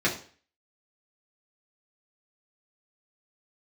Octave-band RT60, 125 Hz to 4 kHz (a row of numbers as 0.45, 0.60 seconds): 0.40, 0.40, 0.45, 0.45, 0.45, 0.45 seconds